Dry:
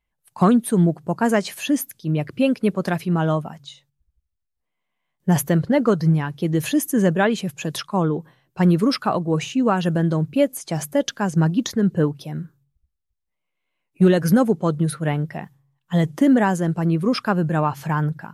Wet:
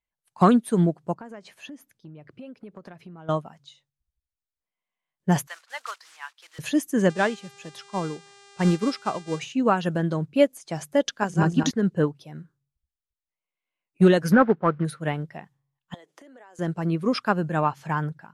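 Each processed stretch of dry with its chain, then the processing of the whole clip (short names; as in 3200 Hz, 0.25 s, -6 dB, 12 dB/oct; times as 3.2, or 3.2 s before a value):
1.14–3.29 high shelf 2700 Hz -11.5 dB + compressor 20:1, threshold -27 dBFS
5.47–6.59 block floating point 5-bit + HPF 980 Hz 24 dB/oct + high shelf 11000 Hz -5.5 dB
7.09–9.39 G.711 law mismatch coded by mu + buzz 400 Hz, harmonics 23, -35 dBFS -3 dB/oct + upward expander, over -25 dBFS
11.12–11.71 regenerating reverse delay 0.103 s, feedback 48%, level -3 dB + de-hum 187.3 Hz, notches 2
14.32–14.85 CVSD 32 kbps + synth low-pass 1500 Hz, resonance Q 2.5
15.94–16.59 HPF 360 Hz 24 dB/oct + compressor 16:1, threshold -34 dBFS
whole clip: LPF 9100 Hz 12 dB/oct; low shelf 340 Hz -5.5 dB; upward expander 1.5:1, over -38 dBFS; gain +2.5 dB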